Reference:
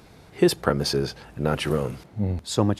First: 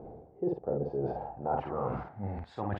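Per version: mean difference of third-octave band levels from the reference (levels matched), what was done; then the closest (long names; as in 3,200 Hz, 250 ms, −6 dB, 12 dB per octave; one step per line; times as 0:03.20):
11.0 dB: reversed playback
downward compressor 16 to 1, threshold −34 dBFS, peak gain reduction 22.5 dB
reversed playback
low-pass filter sweep 480 Hz → 1,900 Hz, 0:00.80–0:02.37
parametric band 780 Hz +13 dB 0.54 octaves
double-tracking delay 50 ms −3.5 dB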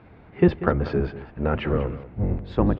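6.5 dB: sub-octave generator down 1 octave, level +3 dB
low-pass filter 2,500 Hz 24 dB per octave
low-shelf EQ 78 Hz −8 dB
single-tap delay 190 ms −15 dB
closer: second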